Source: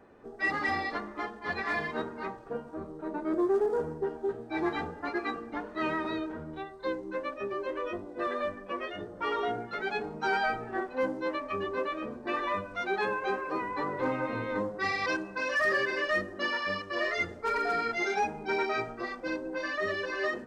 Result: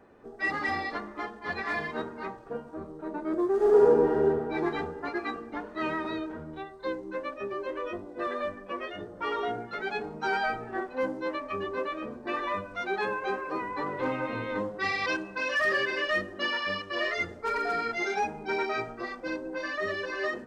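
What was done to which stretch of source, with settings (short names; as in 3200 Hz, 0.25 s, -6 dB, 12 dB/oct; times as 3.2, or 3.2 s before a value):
3.55–4.22 reverb throw, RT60 2.2 s, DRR -8.5 dB
13.86–17.14 bell 3000 Hz +5.5 dB 0.71 oct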